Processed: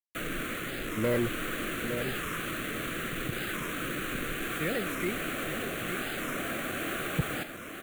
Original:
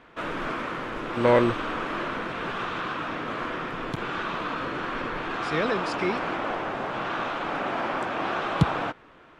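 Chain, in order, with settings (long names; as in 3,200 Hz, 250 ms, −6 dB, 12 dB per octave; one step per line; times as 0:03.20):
low-shelf EQ 91 Hz +2.5 dB
in parallel at −3 dB: downward compressor, threshold −33 dBFS, peak gain reduction 18 dB
on the sum: tempo change 1.2×
bit reduction 5 bits
phaser with its sweep stopped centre 2,200 Hz, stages 4
soft clipping −16 dBFS, distortion −15 dB
on a send: single-tap delay 861 ms −7.5 dB
on the sum: wow of a warped record 45 rpm, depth 160 cents
level −4 dB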